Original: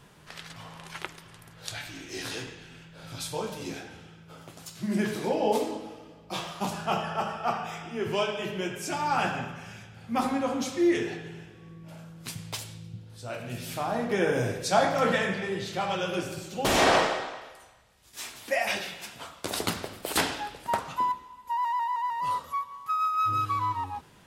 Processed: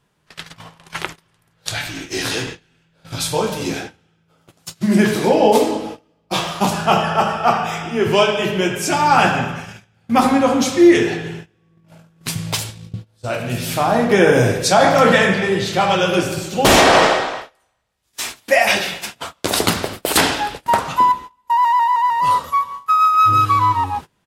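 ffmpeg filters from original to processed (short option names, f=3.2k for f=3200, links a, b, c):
-filter_complex "[0:a]asplit=2[a][b];[b]afade=t=in:st=11.51:d=0.01,afade=t=out:st=12.17:d=0.01,aecho=0:1:590|1180|1770|2360|2950|3540:0.446684|0.223342|0.111671|0.0558354|0.0279177|0.0139589[c];[a][c]amix=inputs=2:normalize=0,agate=range=-24dB:threshold=-42dB:ratio=16:detection=peak,alimiter=level_in=14.5dB:limit=-1dB:release=50:level=0:latency=1,volume=-1dB"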